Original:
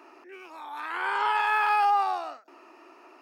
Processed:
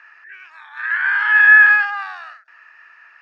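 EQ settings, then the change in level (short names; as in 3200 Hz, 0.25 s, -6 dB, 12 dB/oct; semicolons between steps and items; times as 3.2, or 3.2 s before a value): resonant high-pass 1700 Hz, resonance Q 13; air absorption 99 m; +1.5 dB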